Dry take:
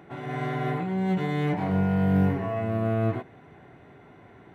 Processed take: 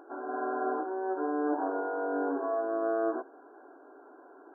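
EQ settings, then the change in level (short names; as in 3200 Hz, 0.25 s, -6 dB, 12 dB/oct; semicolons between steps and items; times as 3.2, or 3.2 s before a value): brick-wall FIR band-pass 260–1700 Hz; 0.0 dB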